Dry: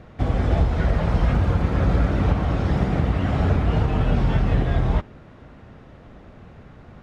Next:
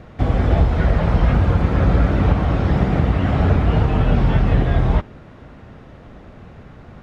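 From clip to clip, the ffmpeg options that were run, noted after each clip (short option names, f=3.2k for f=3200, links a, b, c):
-filter_complex "[0:a]acrossover=split=4300[a][b];[b]acompressor=threshold=-57dB:ratio=4:attack=1:release=60[c];[a][c]amix=inputs=2:normalize=0,volume=4dB"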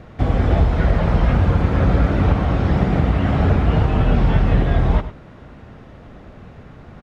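-af "aecho=1:1:101:0.224"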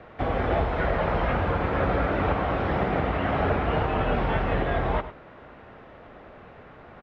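-filter_complex "[0:a]acrossover=split=360 3500:gain=0.224 1 0.112[a][b][c];[a][b][c]amix=inputs=3:normalize=0"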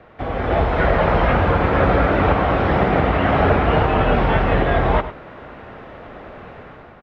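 -af "dynaudnorm=f=210:g=5:m=9.5dB"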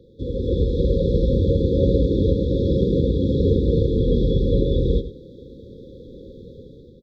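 -af "afftfilt=real='re*(1-between(b*sr/4096,550,3300))':imag='im*(1-between(b*sr/4096,550,3300))':win_size=4096:overlap=0.75"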